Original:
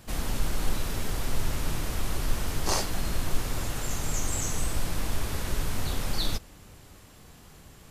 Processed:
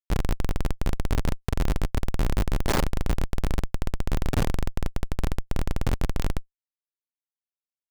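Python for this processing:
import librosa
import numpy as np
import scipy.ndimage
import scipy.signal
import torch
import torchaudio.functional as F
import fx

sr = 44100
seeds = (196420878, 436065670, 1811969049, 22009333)

y = fx.over_compress(x, sr, threshold_db=-24.0, ratio=-0.5, at=(0.73, 1.68), fade=0.02)
y = fx.schmitt(y, sr, flips_db=-24.0)
y = y * 10.0 ** (6.0 / 20.0)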